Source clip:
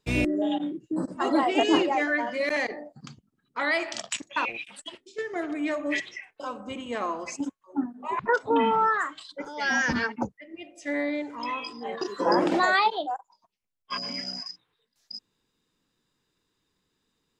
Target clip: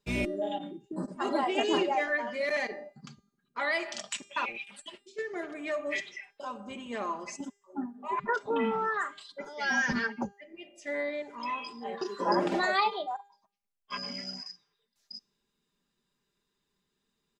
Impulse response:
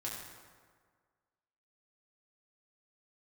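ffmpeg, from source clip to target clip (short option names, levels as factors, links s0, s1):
-af "aecho=1:1:5:0.61,bandreject=f=402.2:t=h:w=4,bandreject=f=804.4:t=h:w=4,bandreject=f=1206.6:t=h:w=4,bandreject=f=1608.8:t=h:w=4,bandreject=f=2011:t=h:w=4,bandreject=f=2413.2:t=h:w=4,bandreject=f=2815.4:t=h:w=4,bandreject=f=3217.6:t=h:w=4,bandreject=f=3619.8:t=h:w=4,bandreject=f=4022:t=h:w=4,bandreject=f=4424.2:t=h:w=4,bandreject=f=4826.4:t=h:w=4,bandreject=f=5228.6:t=h:w=4,bandreject=f=5630.8:t=h:w=4,bandreject=f=6033:t=h:w=4,bandreject=f=6435.2:t=h:w=4,bandreject=f=6837.4:t=h:w=4,bandreject=f=7239.6:t=h:w=4,bandreject=f=7641.8:t=h:w=4,bandreject=f=8044:t=h:w=4,bandreject=f=8446.2:t=h:w=4,bandreject=f=8848.4:t=h:w=4,bandreject=f=9250.6:t=h:w=4,bandreject=f=9652.8:t=h:w=4,bandreject=f=10055:t=h:w=4,bandreject=f=10457.2:t=h:w=4,bandreject=f=10859.4:t=h:w=4,bandreject=f=11261.6:t=h:w=4,bandreject=f=11663.8:t=h:w=4,bandreject=f=12066:t=h:w=4,bandreject=f=12468.2:t=h:w=4,bandreject=f=12870.4:t=h:w=4,bandreject=f=13272.6:t=h:w=4,bandreject=f=13674.8:t=h:w=4,bandreject=f=14077:t=h:w=4,bandreject=f=14479.2:t=h:w=4,bandreject=f=14881.4:t=h:w=4,bandreject=f=15283.6:t=h:w=4,volume=0.531"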